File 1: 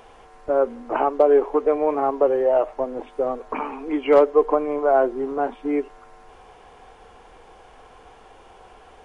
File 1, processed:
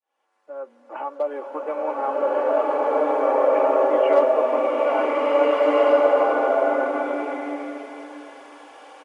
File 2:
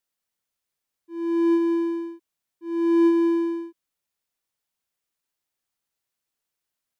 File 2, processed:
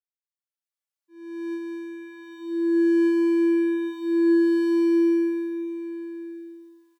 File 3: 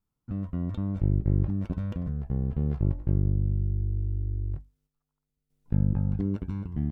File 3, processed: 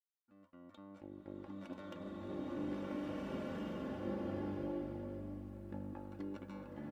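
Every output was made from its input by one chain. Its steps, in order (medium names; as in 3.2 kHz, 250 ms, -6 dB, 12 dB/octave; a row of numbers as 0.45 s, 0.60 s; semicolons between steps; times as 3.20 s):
fade-in on the opening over 1.75 s; Bessel high-pass 560 Hz, order 2; comb 3.5 ms, depth 63%; swelling reverb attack 1730 ms, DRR -9 dB; trim -5 dB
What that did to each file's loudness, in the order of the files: +0.5 LU, +0.5 LU, -15.0 LU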